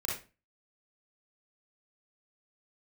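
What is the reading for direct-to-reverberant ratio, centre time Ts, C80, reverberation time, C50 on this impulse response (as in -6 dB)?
-4.0 dB, 41 ms, 10.5 dB, 0.30 s, 2.0 dB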